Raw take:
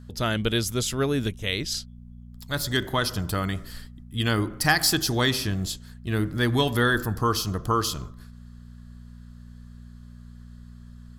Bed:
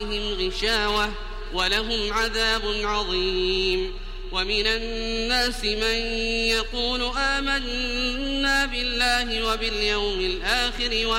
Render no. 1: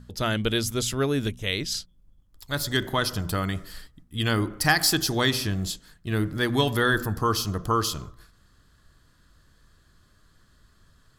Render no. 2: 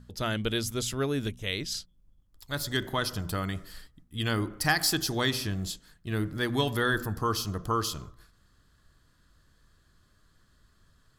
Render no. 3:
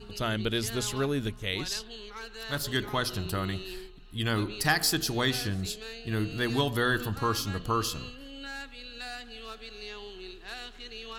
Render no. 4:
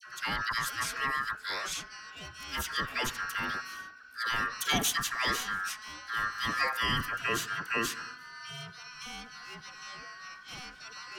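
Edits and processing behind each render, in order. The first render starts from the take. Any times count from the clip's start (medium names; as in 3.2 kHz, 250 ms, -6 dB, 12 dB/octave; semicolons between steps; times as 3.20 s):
de-hum 60 Hz, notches 4
trim -4.5 dB
add bed -18.5 dB
ring modulator 1.5 kHz; phase dispersion lows, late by 61 ms, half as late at 1.4 kHz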